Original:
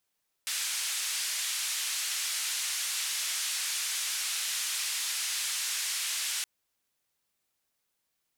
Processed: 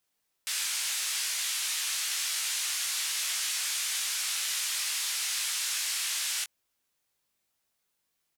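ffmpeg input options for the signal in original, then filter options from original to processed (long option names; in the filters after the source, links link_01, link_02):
-f lavfi -i "anoisesrc=color=white:duration=5.97:sample_rate=44100:seed=1,highpass=frequency=1900,lowpass=frequency=9400,volume=-23dB"
-filter_complex "[0:a]asplit=2[link_01][link_02];[link_02]adelay=19,volume=-6dB[link_03];[link_01][link_03]amix=inputs=2:normalize=0"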